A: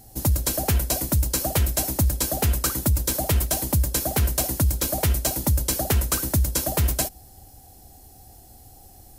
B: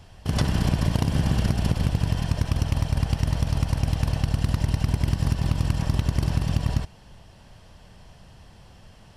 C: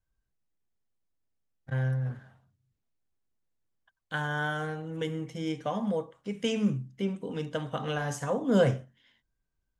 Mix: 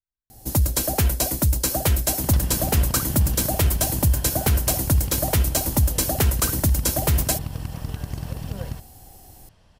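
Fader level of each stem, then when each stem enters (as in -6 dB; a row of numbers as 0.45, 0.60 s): +1.5, -7.5, -16.5 dB; 0.30, 1.95, 0.00 s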